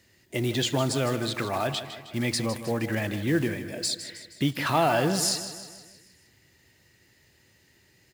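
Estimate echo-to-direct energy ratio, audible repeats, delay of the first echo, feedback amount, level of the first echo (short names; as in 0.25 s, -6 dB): -10.0 dB, 5, 0.157 s, 53%, -11.5 dB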